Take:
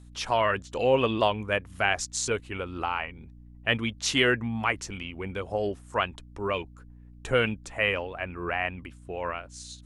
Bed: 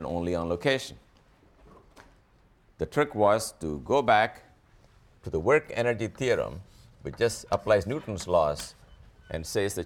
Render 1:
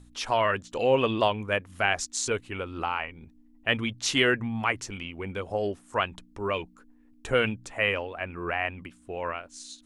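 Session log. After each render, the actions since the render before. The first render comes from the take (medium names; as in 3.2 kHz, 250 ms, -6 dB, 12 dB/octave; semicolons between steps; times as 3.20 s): de-hum 60 Hz, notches 3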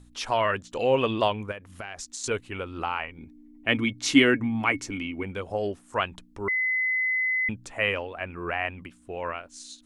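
1.51–2.24 s: compression 10:1, threshold -33 dBFS; 3.18–5.23 s: small resonant body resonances 280/2200 Hz, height 15 dB, ringing for 75 ms; 6.48–7.49 s: bleep 2.03 kHz -22.5 dBFS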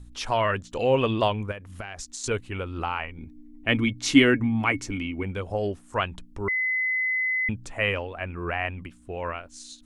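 bass shelf 120 Hz +11 dB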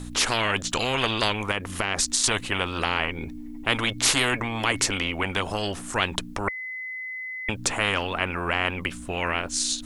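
spectrum-flattening compressor 4:1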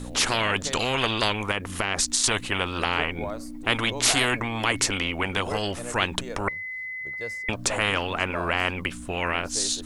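add bed -12 dB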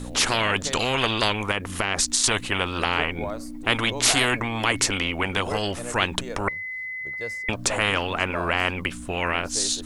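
trim +1.5 dB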